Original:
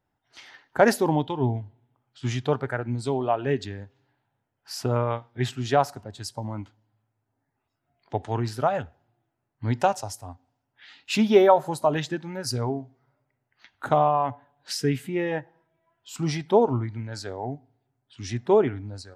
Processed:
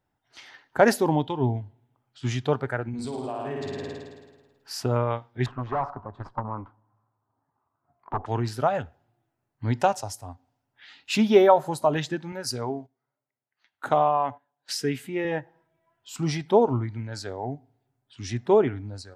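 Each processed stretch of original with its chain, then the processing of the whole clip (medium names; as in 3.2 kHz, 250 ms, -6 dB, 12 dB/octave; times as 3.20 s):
2.88–4.80 s: flutter echo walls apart 9.3 m, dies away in 1.3 s + compression 5:1, threshold -29 dBFS
5.46–8.26 s: transient shaper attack +11 dB, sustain +4 dB + valve stage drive 28 dB, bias 0.65 + resonant low-pass 1.1 kHz, resonance Q 5.1
12.32–15.25 s: high-pass 260 Hz 6 dB/octave + gate -49 dBFS, range -13 dB
whole clip: none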